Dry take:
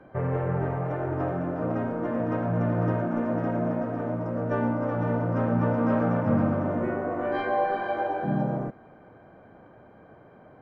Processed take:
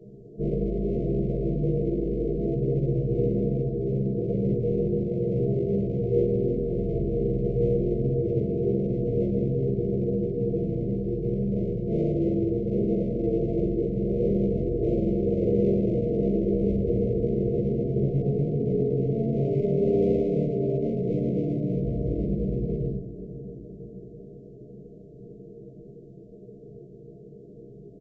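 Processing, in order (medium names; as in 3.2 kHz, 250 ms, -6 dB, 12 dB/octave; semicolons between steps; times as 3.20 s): peaking EQ 180 Hz -11 dB 0.27 oct; static phaser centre 990 Hz, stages 8; on a send at -13.5 dB: reverberation, pre-delay 3 ms; on the sum: one-sided clip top -32 dBFS, bottom -21 dBFS; in parallel at -2 dB: peak limiter -28.5 dBFS, peak gain reduction 7 dB; on the sum: peaking EQ 1.2 kHz +14.5 dB 0.36 oct; hum notches 60/120/180/240/300/360 Hz; comb 5.6 ms, depth 95%; tape echo 189 ms, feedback 71%, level -13 dB, low-pass 2.3 kHz; wide varispeed 0.379×; FFT band-reject 720–2000 Hz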